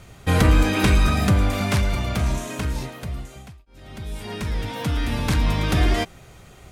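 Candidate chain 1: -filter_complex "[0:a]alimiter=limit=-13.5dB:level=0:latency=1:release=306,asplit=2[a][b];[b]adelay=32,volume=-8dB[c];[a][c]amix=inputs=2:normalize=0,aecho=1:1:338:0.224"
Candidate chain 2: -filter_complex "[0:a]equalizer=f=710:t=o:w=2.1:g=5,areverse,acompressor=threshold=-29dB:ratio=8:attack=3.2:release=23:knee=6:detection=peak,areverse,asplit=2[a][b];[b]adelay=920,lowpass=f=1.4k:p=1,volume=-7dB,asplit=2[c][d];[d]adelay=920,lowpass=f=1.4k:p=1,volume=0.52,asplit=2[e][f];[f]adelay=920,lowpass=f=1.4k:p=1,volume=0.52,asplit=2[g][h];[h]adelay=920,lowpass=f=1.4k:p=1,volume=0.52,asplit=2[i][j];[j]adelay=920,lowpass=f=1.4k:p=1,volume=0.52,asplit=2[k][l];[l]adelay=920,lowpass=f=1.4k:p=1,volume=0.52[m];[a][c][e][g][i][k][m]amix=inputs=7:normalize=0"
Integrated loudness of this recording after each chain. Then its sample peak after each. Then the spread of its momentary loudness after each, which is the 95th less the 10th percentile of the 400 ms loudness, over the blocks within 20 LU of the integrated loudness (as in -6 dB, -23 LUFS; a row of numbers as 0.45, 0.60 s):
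-24.5, -32.0 LUFS; -10.0, -18.0 dBFS; 15, 6 LU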